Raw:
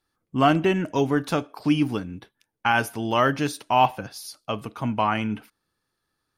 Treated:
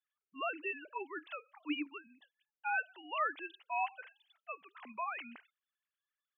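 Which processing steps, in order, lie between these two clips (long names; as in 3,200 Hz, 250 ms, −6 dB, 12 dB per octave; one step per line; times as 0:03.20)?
three sine waves on the formant tracks
first difference
level +3 dB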